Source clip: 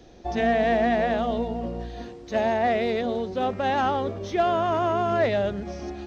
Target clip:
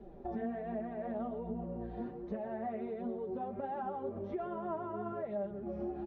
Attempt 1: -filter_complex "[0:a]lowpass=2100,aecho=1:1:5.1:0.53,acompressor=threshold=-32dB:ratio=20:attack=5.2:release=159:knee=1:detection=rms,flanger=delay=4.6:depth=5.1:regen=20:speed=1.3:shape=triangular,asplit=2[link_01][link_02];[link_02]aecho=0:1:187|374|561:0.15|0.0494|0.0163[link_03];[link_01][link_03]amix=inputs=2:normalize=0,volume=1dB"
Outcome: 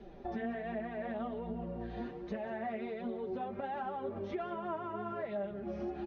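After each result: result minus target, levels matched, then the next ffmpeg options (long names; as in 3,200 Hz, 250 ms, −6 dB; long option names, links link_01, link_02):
echo 57 ms late; 2,000 Hz band +8.0 dB
-filter_complex "[0:a]lowpass=2100,aecho=1:1:5.1:0.53,acompressor=threshold=-32dB:ratio=20:attack=5.2:release=159:knee=1:detection=rms,flanger=delay=4.6:depth=5.1:regen=20:speed=1.3:shape=triangular,asplit=2[link_01][link_02];[link_02]aecho=0:1:130|260|390:0.15|0.0494|0.0163[link_03];[link_01][link_03]amix=inputs=2:normalize=0,volume=1dB"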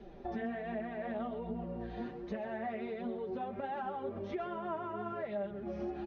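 2,000 Hz band +8.0 dB
-filter_complex "[0:a]lowpass=970,aecho=1:1:5.1:0.53,acompressor=threshold=-32dB:ratio=20:attack=5.2:release=159:knee=1:detection=rms,flanger=delay=4.6:depth=5.1:regen=20:speed=1.3:shape=triangular,asplit=2[link_01][link_02];[link_02]aecho=0:1:130|260|390:0.15|0.0494|0.0163[link_03];[link_01][link_03]amix=inputs=2:normalize=0,volume=1dB"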